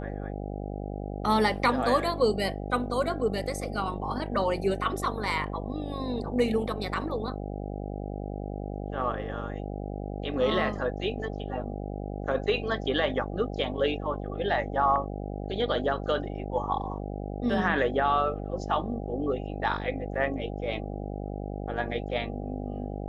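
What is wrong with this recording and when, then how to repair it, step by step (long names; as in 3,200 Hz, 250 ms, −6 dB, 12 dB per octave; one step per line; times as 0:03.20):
mains buzz 50 Hz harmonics 16 −35 dBFS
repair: hum removal 50 Hz, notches 16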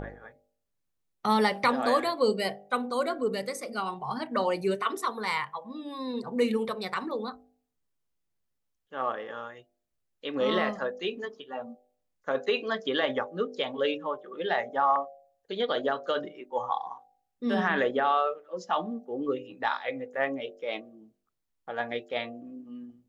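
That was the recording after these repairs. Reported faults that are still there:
none of them is left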